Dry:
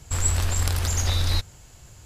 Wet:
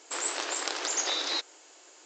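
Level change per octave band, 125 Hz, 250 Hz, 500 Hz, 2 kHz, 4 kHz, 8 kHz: below −40 dB, −6.0 dB, 0.0 dB, 0.0 dB, 0.0 dB, −3.5 dB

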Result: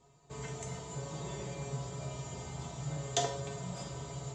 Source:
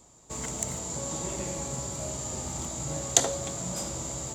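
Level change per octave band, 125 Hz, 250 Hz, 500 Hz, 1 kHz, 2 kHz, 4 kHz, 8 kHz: −1.5, −6.5, −5.5, −3.5, −5.0, −7.0, −15.5 decibels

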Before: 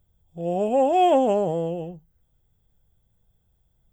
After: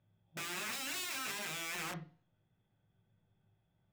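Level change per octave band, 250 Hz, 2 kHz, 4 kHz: −24.5, +3.5, −0.5 decibels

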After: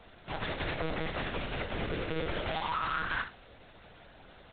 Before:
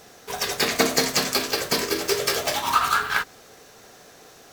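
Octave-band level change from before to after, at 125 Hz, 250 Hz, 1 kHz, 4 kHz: 0.0, −8.5, −10.5, −16.0 decibels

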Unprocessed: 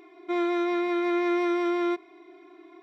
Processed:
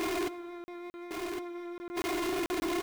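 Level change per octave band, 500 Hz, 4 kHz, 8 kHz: −7.5 dB, +1.5 dB, can't be measured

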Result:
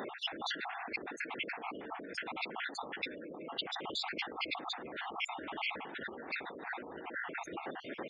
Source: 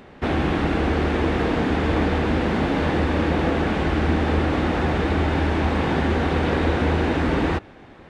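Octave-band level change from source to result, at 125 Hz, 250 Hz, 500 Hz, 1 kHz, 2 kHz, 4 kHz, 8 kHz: −39.0 dB, −26.5 dB, −22.0 dB, −16.0 dB, −12.0 dB, −6.5 dB, can't be measured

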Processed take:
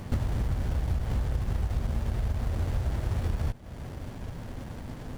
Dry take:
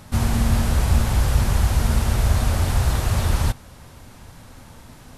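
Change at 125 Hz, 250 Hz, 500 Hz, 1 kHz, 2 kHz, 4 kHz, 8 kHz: −9.0, −10.0, −9.0, −13.0, −14.0, −16.5, −20.5 decibels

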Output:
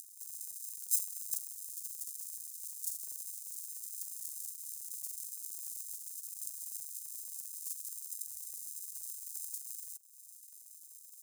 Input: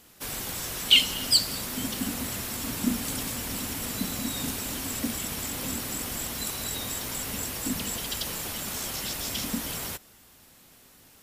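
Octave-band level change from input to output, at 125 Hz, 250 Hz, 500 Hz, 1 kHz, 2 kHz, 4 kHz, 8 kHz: below −40 dB, below −40 dB, below −40 dB, below −40 dB, below −40 dB, −30.0 dB, −8.5 dB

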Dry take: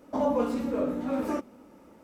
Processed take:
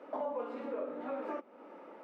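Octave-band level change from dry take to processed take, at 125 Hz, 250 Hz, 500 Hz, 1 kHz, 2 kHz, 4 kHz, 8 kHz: below −20 dB, −15.5 dB, −8.0 dB, −7.0 dB, −6.5 dB, below −10 dB, can't be measured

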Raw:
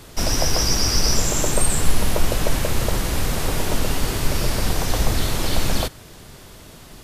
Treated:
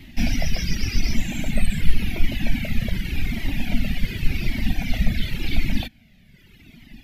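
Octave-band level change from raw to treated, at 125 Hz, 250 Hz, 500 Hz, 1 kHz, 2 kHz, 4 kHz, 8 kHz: −2.0, +0.5, −13.5, −14.5, −1.5, −8.0, −16.5 decibels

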